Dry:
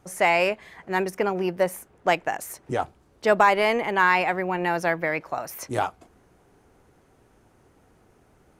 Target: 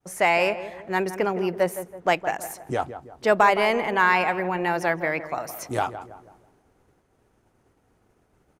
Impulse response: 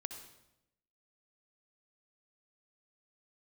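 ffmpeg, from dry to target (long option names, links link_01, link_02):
-filter_complex "[0:a]asplit=2[link_01][link_02];[link_02]adelay=164,lowpass=frequency=1400:poles=1,volume=-11dB,asplit=2[link_03][link_04];[link_04]adelay=164,lowpass=frequency=1400:poles=1,volume=0.46,asplit=2[link_05][link_06];[link_06]adelay=164,lowpass=frequency=1400:poles=1,volume=0.46,asplit=2[link_07][link_08];[link_08]adelay=164,lowpass=frequency=1400:poles=1,volume=0.46,asplit=2[link_09][link_10];[link_10]adelay=164,lowpass=frequency=1400:poles=1,volume=0.46[link_11];[link_01][link_03][link_05][link_07][link_09][link_11]amix=inputs=6:normalize=0,agate=range=-33dB:threshold=-52dB:ratio=3:detection=peak"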